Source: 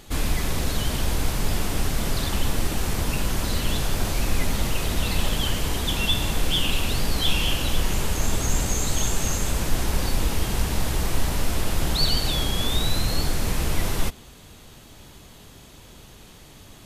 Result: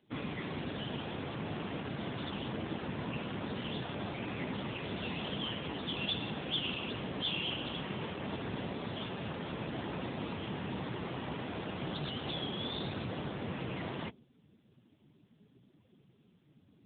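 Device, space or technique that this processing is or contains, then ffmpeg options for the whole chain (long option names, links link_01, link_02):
mobile call with aggressive noise cancelling: -filter_complex "[0:a]asplit=3[link_01][link_02][link_03];[link_01]afade=type=out:start_time=6.32:duration=0.02[link_04];[link_02]highshelf=frequency=6700:gain=-4,afade=type=in:start_time=6.32:duration=0.02,afade=type=out:start_time=7.7:duration=0.02[link_05];[link_03]afade=type=in:start_time=7.7:duration=0.02[link_06];[link_04][link_05][link_06]amix=inputs=3:normalize=0,highpass=130,afftdn=noise_reduction=17:noise_floor=-40,volume=-6.5dB" -ar 8000 -c:a libopencore_amrnb -b:a 7950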